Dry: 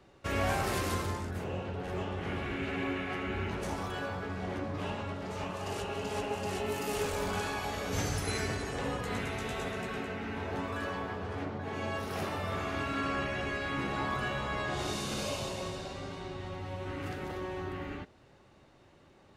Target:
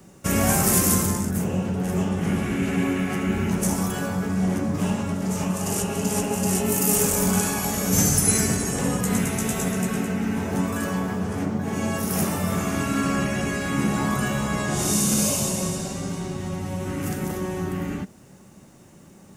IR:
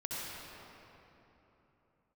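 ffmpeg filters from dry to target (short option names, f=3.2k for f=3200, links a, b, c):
-filter_complex "[0:a]acrossover=split=1300[a][b];[a]equalizer=f=190:w=1.6:g=14.5[c];[b]aexciter=amount=9.3:drive=2.6:freq=5.8k[d];[c][d]amix=inputs=2:normalize=0,volume=5.5dB"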